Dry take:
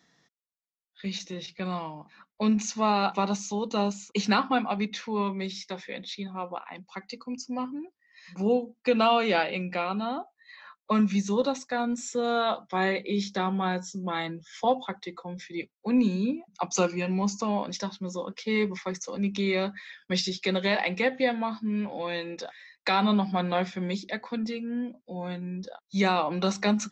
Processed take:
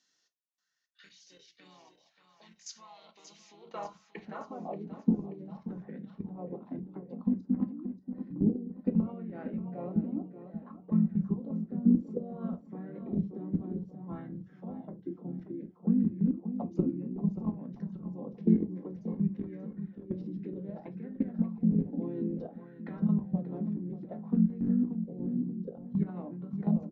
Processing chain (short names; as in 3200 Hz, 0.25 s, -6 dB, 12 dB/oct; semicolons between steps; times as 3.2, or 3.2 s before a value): tilt -2.5 dB/oct; compressor 3:1, threshold -36 dBFS, peak gain reduction 16 dB; band-pass sweep 6600 Hz -> 240 Hz, 2.91–4.96; harmoniser -4 st -3 dB, -3 st -15 dB; level quantiser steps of 17 dB; feedback echo 0.582 s, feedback 42%, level -10 dB; on a send at -7 dB: reverb, pre-delay 3 ms; on the sum: LFO bell 0.59 Hz 290–1800 Hz +10 dB; gain +8 dB